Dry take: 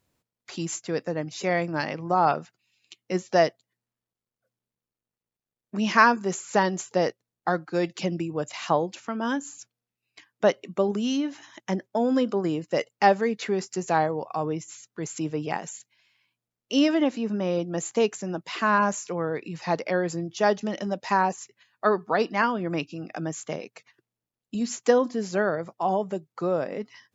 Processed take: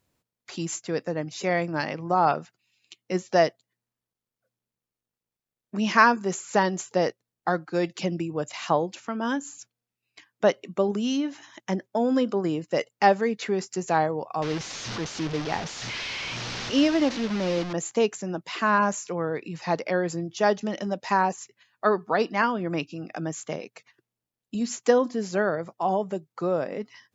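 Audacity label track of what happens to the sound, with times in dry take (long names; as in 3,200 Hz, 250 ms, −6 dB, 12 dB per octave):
14.420000	17.730000	linear delta modulator 32 kbit/s, step −26.5 dBFS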